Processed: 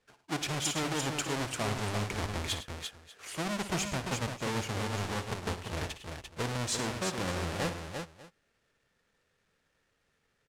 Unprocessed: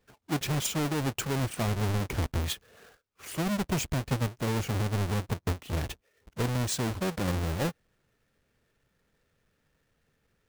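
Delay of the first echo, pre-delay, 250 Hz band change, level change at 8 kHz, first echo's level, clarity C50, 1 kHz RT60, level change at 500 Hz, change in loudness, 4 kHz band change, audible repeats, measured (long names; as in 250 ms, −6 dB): 58 ms, no reverb audible, −5.0 dB, 0.0 dB, −13.0 dB, no reverb audible, no reverb audible, −2.0 dB, −3.5 dB, +1.5 dB, 4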